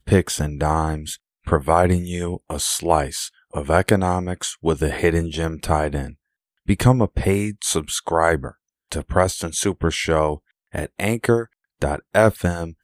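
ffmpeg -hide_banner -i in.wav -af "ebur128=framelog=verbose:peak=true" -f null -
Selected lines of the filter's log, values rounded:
Integrated loudness:
  I:         -21.2 LUFS
  Threshold: -31.6 LUFS
Loudness range:
  LRA:         1.6 LU
  Threshold: -41.7 LUFS
  LRA low:   -22.5 LUFS
  LRA high:  -20.9 LUFS
True peak:
  Peak:       -1.5 dBFS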